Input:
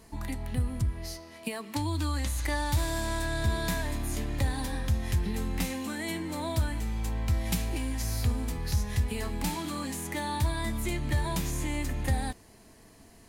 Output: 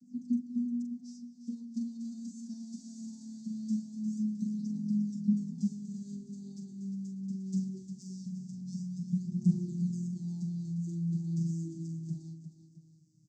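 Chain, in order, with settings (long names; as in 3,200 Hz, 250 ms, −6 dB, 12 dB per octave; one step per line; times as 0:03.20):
vocoder with a gliding carrier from B3, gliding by −8 semitones
elliptic band-stop filter 240–5,100 Hz, stop band 40 dB
flat-topped bell 2,600 Hz −8.5 dB
phase shifter 0.21 Hz, delay 3.3 ms, feedback 55%
on a send: multi-tap delay 42/353/664 ms −6.5/−9.5/−16.5 dB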